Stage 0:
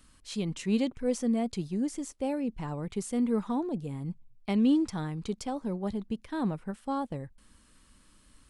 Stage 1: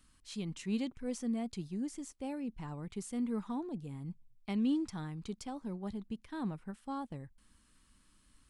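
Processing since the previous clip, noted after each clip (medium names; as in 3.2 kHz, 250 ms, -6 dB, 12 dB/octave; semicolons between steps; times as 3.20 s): peaking EQ 530 Hz -5.5 dB 0.85 oct; trim -6.5 dB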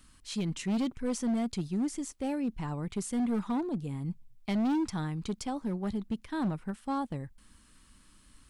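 hard clipper -33.5 dBFS, distortion -12 dB; trim +7.5 dB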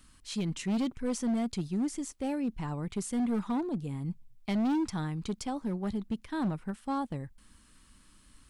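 no audible change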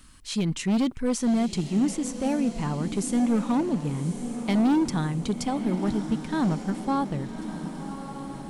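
echo that smears into a reverb 1156 ms, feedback 54%, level -9.5 dB; trim +6.5 dB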